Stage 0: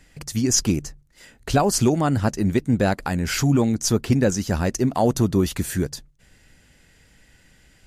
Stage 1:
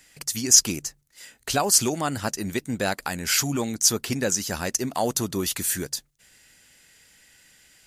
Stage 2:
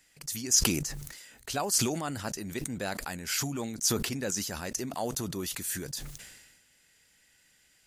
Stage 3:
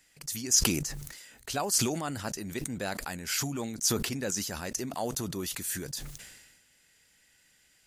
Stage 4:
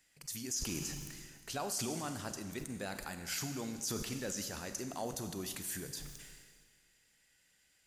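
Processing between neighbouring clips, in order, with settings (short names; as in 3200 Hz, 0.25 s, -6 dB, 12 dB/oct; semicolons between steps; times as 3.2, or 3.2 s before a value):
tilt +3 dB/oct; gain -2.5 dB
sustainer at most 44 dB/s; gain -9 dB
nothing audible
Schroeder reverb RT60 1.7 s, combs from 31 ms, DRR 8 dB; limiter -20 dBFS, peak gain reduction 11 dB; gain -7 dB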